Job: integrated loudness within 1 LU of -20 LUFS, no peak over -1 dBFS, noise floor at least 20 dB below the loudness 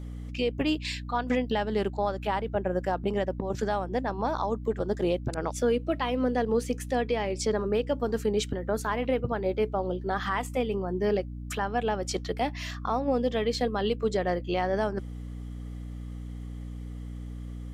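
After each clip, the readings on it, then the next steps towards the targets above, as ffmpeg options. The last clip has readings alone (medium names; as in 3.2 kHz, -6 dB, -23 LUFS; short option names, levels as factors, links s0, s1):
hum 60 Hz; highest harmonic 300 Hz; hum level -35 dBFS; loudness -29.0 LUFS; peak level -15.5 dBFS; loudness target -20.0 LUFS
-> -af "bandreject=f=60:t=h:w=6,bandreject=f=120:t=h:w=6,bandreject=f=180:t=h:w=6,bandreject=f=240:t=h:w=6,bandreject=f=300:t=h:w=6"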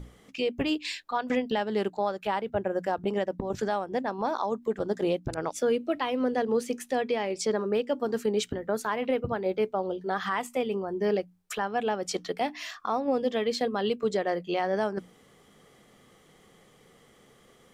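hum not found; loudness -29.5 LUFS; peak level -15.5 dBFS; loudness target -20.0 LUFS
-> -af "volume=2.99"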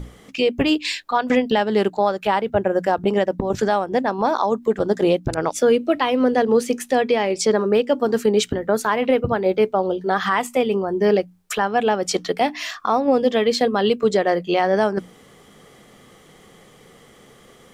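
loudness -20.0 LUFS; peak level -6.0 dBFS; noise floor -50 dBFS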